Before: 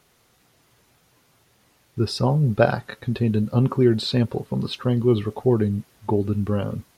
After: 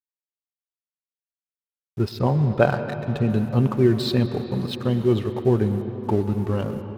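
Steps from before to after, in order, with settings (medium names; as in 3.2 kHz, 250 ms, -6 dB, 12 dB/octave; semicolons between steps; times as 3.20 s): 2.09–3.30 s: low-pass 4.2 kHz 24 dB/octave; crossover distortion -40.5 dBFS; on a send: reverberation RT60 4.4 s, pre-delay 109 ms, DRR 9 dB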